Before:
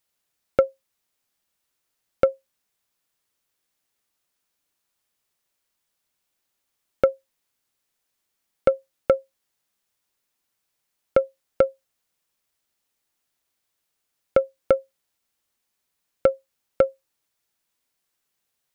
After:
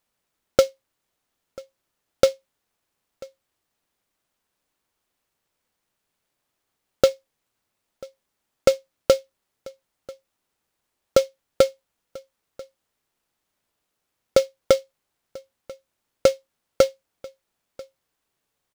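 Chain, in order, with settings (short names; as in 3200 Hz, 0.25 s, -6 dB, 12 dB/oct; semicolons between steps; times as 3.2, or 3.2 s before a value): in parallel at -10 dB: sample-rate reducer 2700 Hz, jitter 0%; on the sum: echo 0.99 s -22.5 dB; noise-modulated delay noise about 4200 Hz, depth 0.047 ms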